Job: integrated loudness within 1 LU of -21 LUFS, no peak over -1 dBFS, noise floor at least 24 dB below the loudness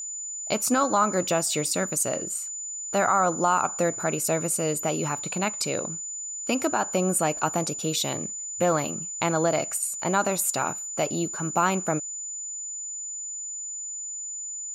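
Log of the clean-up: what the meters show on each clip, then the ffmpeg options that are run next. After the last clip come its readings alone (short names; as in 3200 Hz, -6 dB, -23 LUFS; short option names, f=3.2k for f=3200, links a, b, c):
steady tone 7000 Hz; tone level -32 dBFS; loudness -26.0 LUFS; peak -11.0 dBFS; loudness target -21.0 LUFS
-> -af "bandreject=f=7k:w=30"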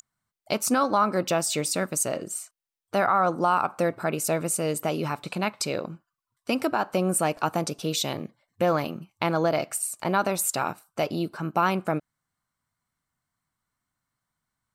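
steady tone none; loudness -26.5 LUFS; peak -11.5 dBFS; loudness target -21.0 LUFS
-> -af "volume=5.5dB"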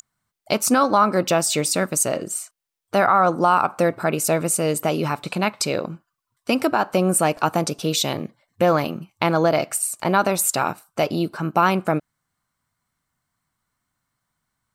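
loudness -21.0 LUFS; peak -6.0 dBFS; noise floor -80 dBFS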